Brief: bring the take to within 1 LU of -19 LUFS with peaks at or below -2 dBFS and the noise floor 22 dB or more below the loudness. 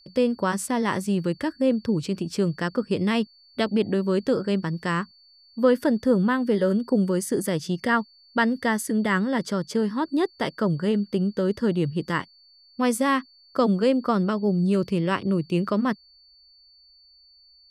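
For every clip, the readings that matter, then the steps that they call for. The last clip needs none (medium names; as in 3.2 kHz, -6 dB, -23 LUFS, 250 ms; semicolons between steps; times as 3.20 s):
steady tone 4.5 kHz; tone level -53 dBFS; loudness -24.5 LUFS; peak level -9.5 dBFS; loudness target -19.0 LUFS
-> band-stop 4.5 kHz, Q 30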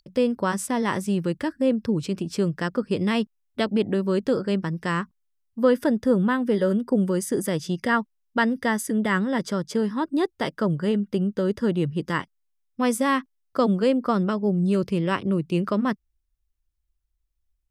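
steady tone not found; loudness -24.5 LUFS; peak level -9.5 dBFS; loudness target -19.0 LUFS
-> trim +5.5 dB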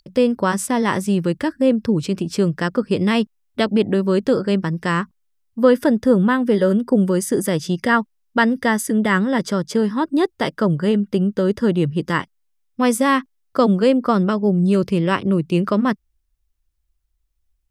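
loudness -19.0 LUFS; peak level -4.0 dBFS; noise floor -69 dBFS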